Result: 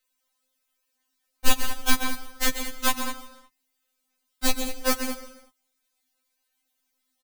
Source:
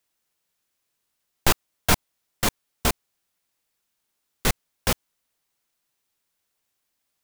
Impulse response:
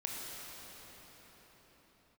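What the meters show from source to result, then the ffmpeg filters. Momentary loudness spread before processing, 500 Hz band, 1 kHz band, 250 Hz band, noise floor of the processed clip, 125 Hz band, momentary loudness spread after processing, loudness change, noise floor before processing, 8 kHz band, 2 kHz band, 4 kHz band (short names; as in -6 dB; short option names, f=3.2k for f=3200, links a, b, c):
5 LU, -2.0 dB, -1.0 dB, +0.5 dB, -77 dBFS, -12.5 dB, 7 LU, -1.0 dB, -78 dBFS, -0.5 dB, 0.0 dB, 0.0 dB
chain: -filter_complex "[0:a]alimiter=limit=-8.5dB:level=0:latency=1:release=14,aecho=1:1:134.1|204.1:0.355|0.251,aphaser=in_gain=1:out_gain=1:delay=3.6:decay=0.35:speed=0.97:type=sinusoidal,asplit=2[a][b];[1:a]atrim=start_sample=2205,afade=t=out:st=0.42:d=0.01,atrim=end_sample=18963[c];[b][c]afir=irnorm=-1:irlink=0,volume=-11.5dB[d];[a][d]amix=inputs=2:normalize=0,afftfilt=real='re*3.46*eq(mod(b,12),0)':imag='im*3.46*eq(mod(b,12),0)':win_size=2048:overlap=0.75"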